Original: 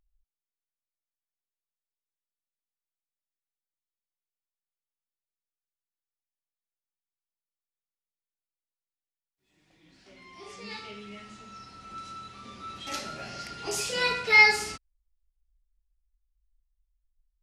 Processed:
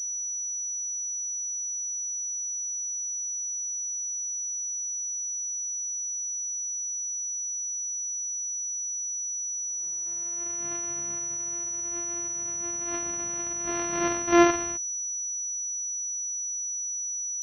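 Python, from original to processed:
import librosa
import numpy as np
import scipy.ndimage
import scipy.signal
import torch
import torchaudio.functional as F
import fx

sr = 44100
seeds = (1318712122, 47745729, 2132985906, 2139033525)

y = np.r_[np.sort(x[:len(x) // 128 * 128].reshape(-1, 128), axis=1).ravel(), x[len(x) // 128 * 128:]]
y = fx.pwm(y, sr, carrier_hz=5900.0)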